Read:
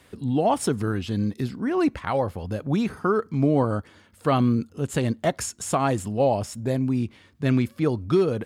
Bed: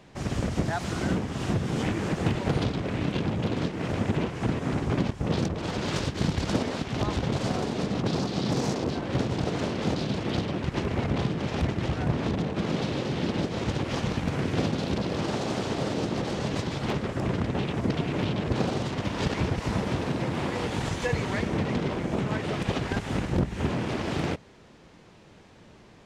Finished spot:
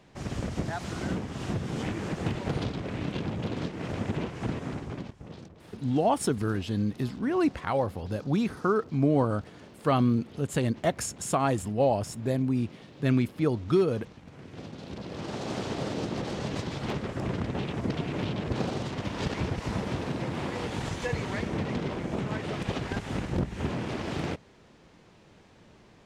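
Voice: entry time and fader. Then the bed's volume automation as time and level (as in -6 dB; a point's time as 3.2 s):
5.60 s, -3.0 dB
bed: 4.57 s -4.5 dB
5.5 s -21 dB
14.25 s -21 dB
15.55 s -3.5 dB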